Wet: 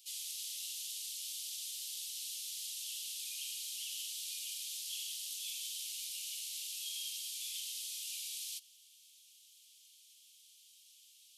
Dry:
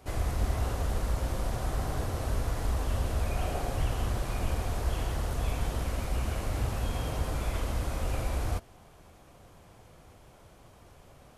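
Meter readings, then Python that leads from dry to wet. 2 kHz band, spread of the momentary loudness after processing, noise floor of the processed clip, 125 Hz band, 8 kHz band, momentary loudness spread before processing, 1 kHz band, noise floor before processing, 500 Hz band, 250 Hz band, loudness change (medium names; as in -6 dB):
-12.0 dB, 20 LU, -63 dBFS, under -40 dB, +6.0 dB, 2 LU, under -40 dB, -56 dBFS, under -40 dB, under -40 dB, -7.0 dB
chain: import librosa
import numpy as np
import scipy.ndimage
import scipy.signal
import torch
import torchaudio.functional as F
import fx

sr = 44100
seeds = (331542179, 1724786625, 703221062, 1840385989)

y = scipy.signal.sosfilt(scipy.signal.butter(8, 3000.0, 'highpass', fs=sr, output='sos'), x)
y = y * 10.0 ** (6.0 / 20.0)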